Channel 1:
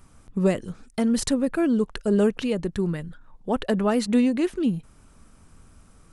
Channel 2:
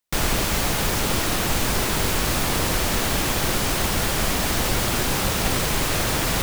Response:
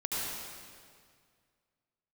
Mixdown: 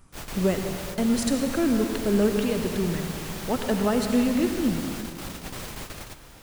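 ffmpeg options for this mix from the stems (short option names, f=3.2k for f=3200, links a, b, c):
-filter_complex "[0:a]volume=-4.5dB,asplit=3[a][b][c];[b]volume=-8dB[d];[1:a]volume=-14.5dB,asplit=2[e][f];[f]volume=-18.5dB[g];[c]apad=whole_len=283546[h];[e][h]sidechaingate=range=-33dB:threshold=-55dB:ratio=16:detection=peak[i];[2:a]atrim=start_sample=2205[j];[d][g]amix=inputs=2:normalize=0[k];[k][j]afir=irnorm=-1:irlink=0[l];[a][i][l]amix=inputs=3:normalize=0"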